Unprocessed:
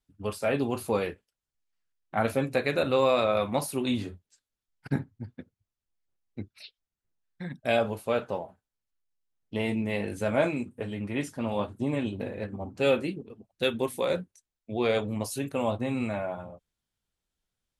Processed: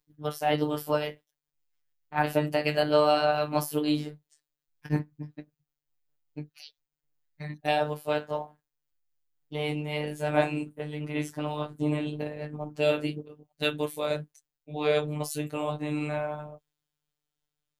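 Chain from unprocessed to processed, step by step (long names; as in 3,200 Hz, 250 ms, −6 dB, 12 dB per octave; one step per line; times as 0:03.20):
pitch glide at a constant tempo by +2.5 semitones ending unshifted
phases set to zero 150 Hz
level +3.5 dB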